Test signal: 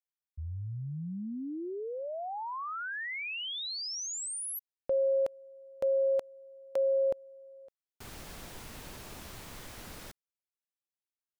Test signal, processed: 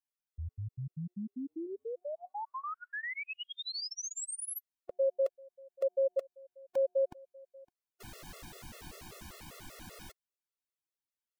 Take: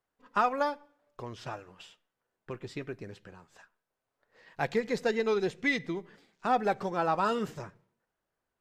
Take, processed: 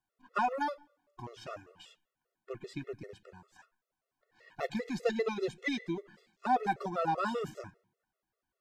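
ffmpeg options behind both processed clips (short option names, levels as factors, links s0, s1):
-af "afftfilt=real='re*gt(sin(2*PI*5.1*pts/sr)*(1-2*mod(floor(b*sr/1024/360),2)),0)':imag='im*gt(sin(2*PI*5.1*pts/sr)*(1-2*mod(floor(b*sr/1024/360),2)),0)':win_size=1024:overlap=0.75"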